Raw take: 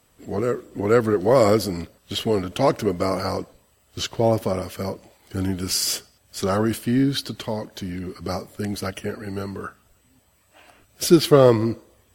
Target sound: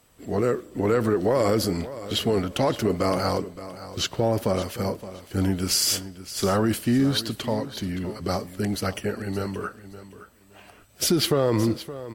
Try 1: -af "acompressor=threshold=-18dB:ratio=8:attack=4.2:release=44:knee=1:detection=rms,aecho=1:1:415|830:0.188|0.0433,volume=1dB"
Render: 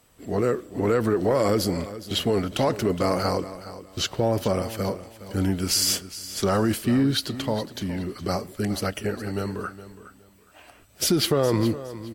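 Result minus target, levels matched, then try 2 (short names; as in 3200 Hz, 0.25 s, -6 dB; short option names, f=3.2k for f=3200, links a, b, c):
echo 0.154 s early
-af "acompressor=threshold=-18dB:ratio=8:attack=4.2:release=44:knee=1:detection=rms,aecho=1:1:569|1138:0.188|0.0433,volume=1dB"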